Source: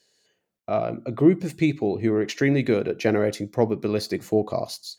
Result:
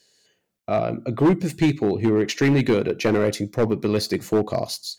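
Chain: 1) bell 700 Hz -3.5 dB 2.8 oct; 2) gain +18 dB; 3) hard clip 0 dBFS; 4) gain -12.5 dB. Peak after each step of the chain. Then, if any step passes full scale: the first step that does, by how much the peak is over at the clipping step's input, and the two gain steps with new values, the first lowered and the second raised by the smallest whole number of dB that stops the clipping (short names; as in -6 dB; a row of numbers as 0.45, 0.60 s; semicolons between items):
-8.0, +10.0, 0.0, -12.5 dBFS; step 2, 10.0 dB; step 2 +8 dB, step 4 -2.5 dB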